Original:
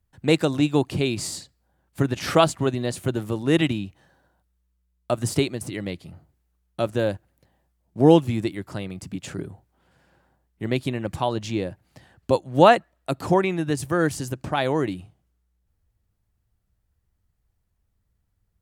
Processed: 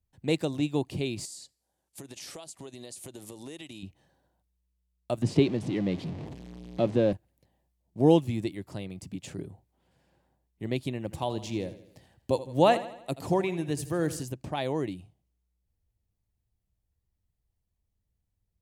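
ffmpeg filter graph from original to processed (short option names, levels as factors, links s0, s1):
-filter_complex "[0:a]asettb=1/sr,asplit=3[s0][s1][s2];[s0]atrim=end=1.254[s3];[s1]atrim=start=1.25:end=3.83,asetpts=PTS-STARTPTS,afade=t=in:d=0.004:c=qsin,afade=t=out:st=2.576:d=0.004:c=qsin,lowpass=f=12000:w=0.5412,lowpass=f=12000:w=1.3066,bass=f=250:g=-10,treble=f=4000:g=12,acompressor=threshold=0.0282:ratio=16:attack=3.2:release=140:knee=1:detection=peak[s4];[s2]atrim=start=3.826[s5];[s3][s4]acrossfade=d=0.004:c1=hsin:c2=qsin[s6];[s6][s5]acrossfade=d=0.004:c1=qsin:c2=hsin,asettb=1/sr,asplit=3[s7][s8][s9];[s7]atrim=end=5.224[s10];[s8]atrim=start=5.22:end=7.13,asetpts=PTS-STARTPTS,afade=t=in:d=0.004:c=qsin,afade=t=out:st=1.906:d=0.004:c=qsin,aeval=exprs='val(0)+0.5*0.0299*sgn(val(0))':c=same,highpass=170,lowpass=4100,lowshelf=f=340:g=11[s11];[s9]atrim=start=7.126[s12];[s10][s11]acrossfade=d=0.004:c1=hsin:c2=qsin[s13];[s13][s12]acrossfade=d=0.004:c1=qsin:c2=hsin,asettb=1/sr,asplit=3[s14][s15][s16];[s14]atrim=end=11.004[s17];[s15]atrim=start=11:end=14.23,asetpts=PTS-STARTPTS,afade=t=in:d=0.004:c=qsin,afade=t=out:st=3.226:d=0.004:c=qsin,highshelf=f=9500:g=5,aecho=1:1:81|162|243|324|405:0.188|0.0942|0.0471|0.0235|0.0118,atrim=end_sample=142443[s18];[s16]atrim=start=14.226[s19];[s17][s18]acrossfade=d=0.004:c1=hsin:c2=qsin[s20];[s20][s19]acrossfade=d=0.004:c1=qsin:c2=hsin,equalizer=f=1400:w=2:g=-9,dynaudnorm=f=500:g=17:m=3.76,volume=0.422"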